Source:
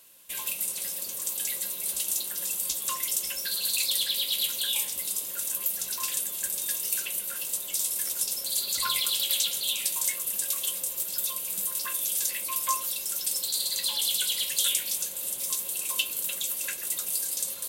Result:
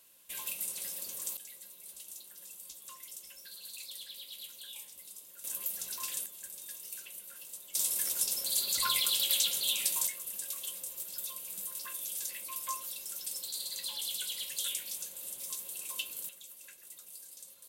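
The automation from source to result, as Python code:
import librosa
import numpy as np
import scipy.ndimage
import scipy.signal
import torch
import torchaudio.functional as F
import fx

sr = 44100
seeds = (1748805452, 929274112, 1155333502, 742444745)

y = fx.gain(x, sr, db=fx.steps((0.0, -6.5), (1.37, -18.5), (5.44, -7.5), (6.26, -15.0), (7.75, -2.5), (10.07, -10.0), (16.29, -20.0)))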